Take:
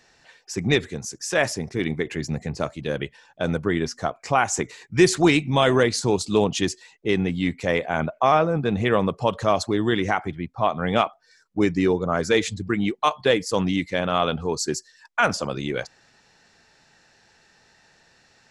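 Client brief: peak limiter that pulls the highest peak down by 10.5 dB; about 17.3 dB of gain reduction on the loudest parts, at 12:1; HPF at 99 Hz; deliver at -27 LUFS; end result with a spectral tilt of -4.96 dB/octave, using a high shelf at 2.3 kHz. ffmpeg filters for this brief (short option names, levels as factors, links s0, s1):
-af "highpass=99,highshelf=f=2300:g=-4.5,acompressor=threshold=0.0355:ratio=12,volume=2.99,alimiter=limit=0.178:level=0:latency=1"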